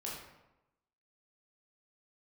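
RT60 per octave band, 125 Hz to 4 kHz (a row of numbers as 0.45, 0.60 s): 1.0, 0.95, 0.95, 0.95, 0.80, 0.60 s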